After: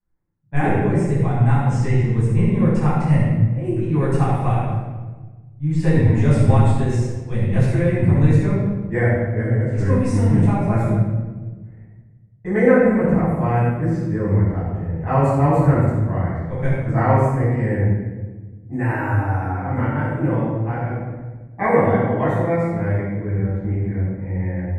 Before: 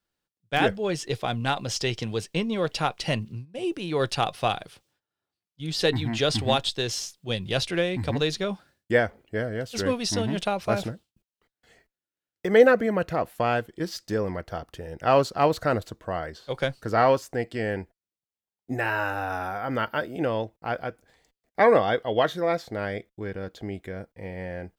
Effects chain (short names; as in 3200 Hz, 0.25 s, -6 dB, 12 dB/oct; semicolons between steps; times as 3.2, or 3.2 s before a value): low-pass opened by the level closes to 1600 Hz, open at -23 dBFS; EQ curve 120 Hz 0 dB, 650 Hz -13 dB, 940 Hz -8 dB, 1500 Hz -15 dB, 2100 Hz -9 dB, 3100 Hz -29 dB, 4700 Hz -30 dB, 8300 Hz -8 dB, 13000 Hz -17 dB; shoebox room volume 1000 m³, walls mixed, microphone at 9 m; gain -1.5 dB